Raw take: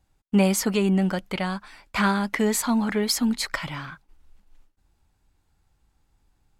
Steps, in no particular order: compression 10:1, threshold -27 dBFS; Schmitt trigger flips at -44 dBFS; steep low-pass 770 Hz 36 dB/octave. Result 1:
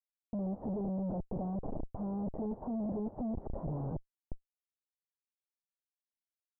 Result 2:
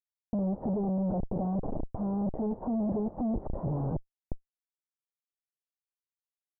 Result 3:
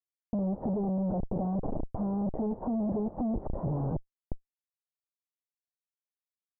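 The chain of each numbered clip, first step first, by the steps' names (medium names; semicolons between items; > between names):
compression > Schmitt trigger > steep low-pass; Schmitt trigger > compression > steep low-pass; Schmitt trigger > steep low-pass > compression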